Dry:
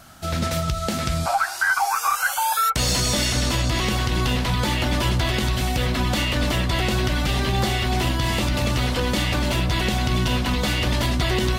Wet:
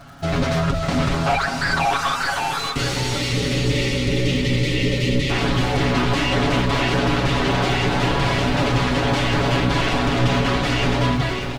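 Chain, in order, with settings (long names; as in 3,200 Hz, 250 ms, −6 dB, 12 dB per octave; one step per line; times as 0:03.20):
fade-out on the ending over 0.79 s
wave folding −21.5 dBFS
time-frequency box erased 0:02.58–0:05.30, 600–1,800 Hz
single-tap delay 590 ms −7.5 dB
in parallel at −10 dB: bit reduction 5 bits
on the sum: head-to-tape spacing loss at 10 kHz 20 dB
surface crackle 120 per second −43 dBFS
comb filter 7.2 ms, depth 78%
feedback delay with all-pass diffusion 718 ms, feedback 57%, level −15 dB
level +5 dB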